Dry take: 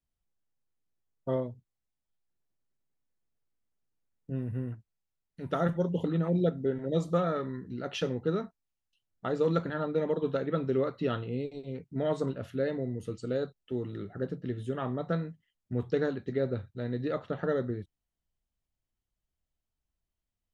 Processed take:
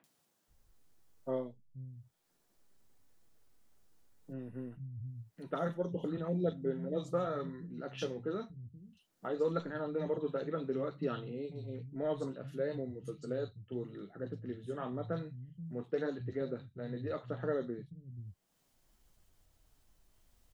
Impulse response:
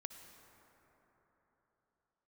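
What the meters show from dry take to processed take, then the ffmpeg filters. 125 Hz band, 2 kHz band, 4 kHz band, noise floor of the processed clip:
-7.5 dB, -7.0 dB, -7.5 dB, -76 dBFS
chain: -filter_complex "[0:a]acompressor=mode=upward:threshold=0.00891:ratio=2.5,flanger=delay=6.1:depth=3.7:regen=-53:speed=0.92:shape=sinusoidal,acrossover=split=150|2500[s0][s1][s2];[s2]adelay=40[s3];[s0]adelay=480[s4];[s4][s1][s3]amix=inputs=3:normalize=0,volume=0.841"

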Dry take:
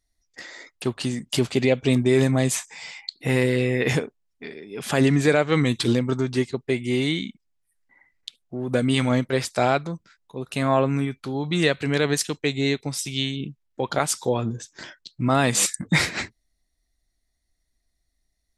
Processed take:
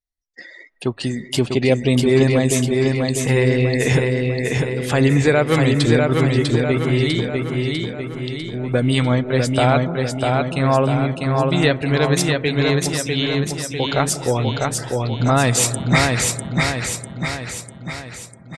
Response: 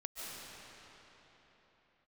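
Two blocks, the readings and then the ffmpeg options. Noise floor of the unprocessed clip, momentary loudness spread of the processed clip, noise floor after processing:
-74 dBFS, 10 LU, -41 dBFS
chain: -filter_complex "[0:a]asplit=2[s0][s1];[s1]lowpass=2200[s2];[1:a]atrim=start_sample=2205,highshelf=f=2800:g=-7.5[s3];[s2][s3]afir=irnorm=-1:irlink=0,volume=0.266[s4];[s0][s4]amix=inputs=2:normalize=0,afftdn=nr=20:nf=-40,asplit=2[s5][s6];[s6]aecho=0:1:648|1296|1944|2592|3240|3888|4536:0.708|0.382|0.206|0.111|0.0602|0.0325|0.0176[s7];[s5][s7]amix=inputs=2:normalize=0,asubboost=boost=3.5:cutoff=100,volume=1.41"

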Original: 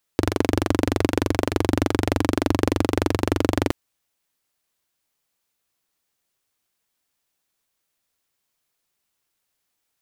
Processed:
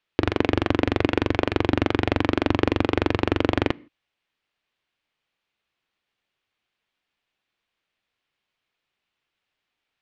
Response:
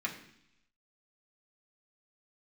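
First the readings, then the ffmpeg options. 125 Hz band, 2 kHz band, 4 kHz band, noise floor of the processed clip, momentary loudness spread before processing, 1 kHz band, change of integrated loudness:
-1.5 dB, +2.5 dB, +0.5 dB, -83 dBFS, 2 LU, 0.0 dB, -0.5 dB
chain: -filter_complex "[0:a]lowpass=f=3000:t=q:w=1.5,asplit=2[s0][s1];[1:a]atrim=start_sample=2205,afade=t=out:st=0.22:d=0.01,atrim=end_sample=10143[s2];[s1][s2]afir=irnorm=-1:irlink=0,volume=0.0944[s3];[s0][s3]amix=inputs=2:normalize=0,volume=0.891"

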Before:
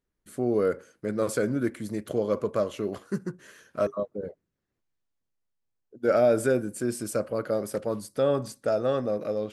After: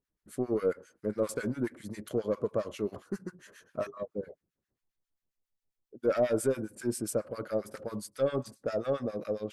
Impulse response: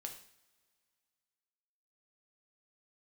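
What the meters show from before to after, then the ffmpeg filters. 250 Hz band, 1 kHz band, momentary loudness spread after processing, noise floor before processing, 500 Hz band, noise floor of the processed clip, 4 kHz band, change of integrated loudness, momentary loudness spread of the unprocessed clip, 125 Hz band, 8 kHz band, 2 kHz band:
-5.0 dB, -7.0 dB, 11 LU, -82 dBFS, -5.5 dB, under -85 dBFS, -5.0 dB, -5.5 dB, 10 LU, -5.5 dB, -3.0 dB, -6.5 dB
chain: -filter_complex "[0:a]aeval=exprs='0.266*(cos(1*acos(clip(val(0)/0.266,-1,1)))-cos(1*PI/2))+0.0211*(cos(5*acos(clip(val(0)/0.266,-1,1)))-cos(5*PI/2))+0.00188*(cos(8*acos(clip(val(0)/0.266,-1,1)))-cos(8*PI/2))':c=same,acrossover=split=1100[s0][s1];[s0]aeval=exprs='val(0)*(1-1/2+1/2*cos(2*PI*7.4*n/s))':c=same[s2];[s1]aeval=exprs='val(0)*(1-1/2-1/2*cos(2*PI*7.4*n/s))':c=same[s3];[s2][s3]amix=inputs=2:normalize=0,volume=0.75"

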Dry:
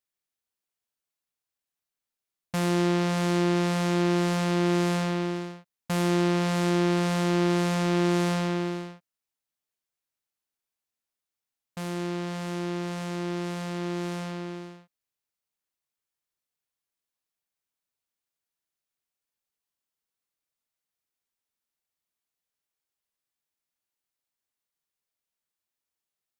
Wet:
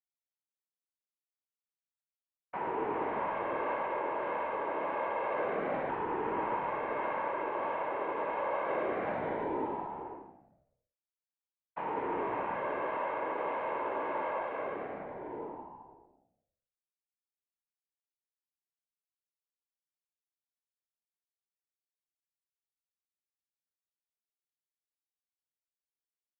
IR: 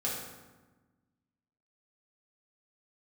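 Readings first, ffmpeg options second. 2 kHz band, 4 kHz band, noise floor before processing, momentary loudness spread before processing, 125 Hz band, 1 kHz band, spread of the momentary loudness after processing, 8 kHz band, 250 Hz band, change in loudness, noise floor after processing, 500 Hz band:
-5.0 dB, -21.5 dB, under -85 dBFS, 11 LU, -25.0 dB, +1.0 dB, 9 LU, under -35 dB, -16.0 dB, -8.0 dB, under -85 dBFS, -4.0 dB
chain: -filter_complex "[0:a]equalizer=f=860:t=o:w=0.3:g=14,asplit=2[s0][s1];[s1]aecho=0:1:420|777|1080|1338|1558:0.631|0.398|0.251|0.158|0.1[s2];[s0][s2]amix=inputs=2:normalize=0,highpass=f=260:t=q:w=0.5412,highpass=f=260:t=q:w=1.307,lowpass=f=2400:t=q:w=0.5176,lowpass=f=2400:t=q:w=0.7071,lowpass=f=2400:t=q:w=1.932,afreqshift=53,alimiter=level_in=1.26:limit=0.0631:level=0:latency=1,volume=0.794,anlmdn=0.158,asplit=2[s3][s4];[s4]asplit=6[s5][s6][s7][s8][s9][s10];[s5]adelay=105,afreqshift=-65,volume=0.355[s11];[s6]adelay=210,afreqshift=-130,volume=0.178[s12];[s7]adelay=315,afreqshift=-195,volume=0.0891[s13];[s8]adelay=420,afreqshift=-260,volume=0.0442[s14];[s9]adelay=525,afreqshift=-325,volume=0.0221[s15];[s10]adelay=630,afreqshift=-390,volume=0.0111[s16];[s11][s12][s13][s14][s15][s16]amix=inputs=6:normalize=0[s17];[s3][s17]amix=inputs=2:normalize=0,afftfilt=real='hypot(re,im)*cos(2*PI*random(0))':imag='hypot(re,im)*sin(2*PI*random(1))':win_size=512:overlap=0.75,volume=1.78"

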